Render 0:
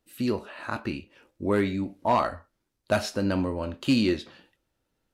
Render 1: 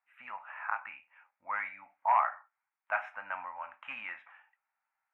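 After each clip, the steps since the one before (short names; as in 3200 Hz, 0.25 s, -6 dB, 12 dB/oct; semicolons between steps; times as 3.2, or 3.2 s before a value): elliptic band-pass 790–2300 Hz, stop band 40 dB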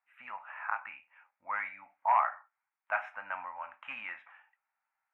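nothing audible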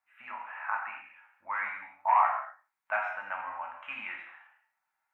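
non-linear reverb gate 0.27 s falling, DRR 0 dB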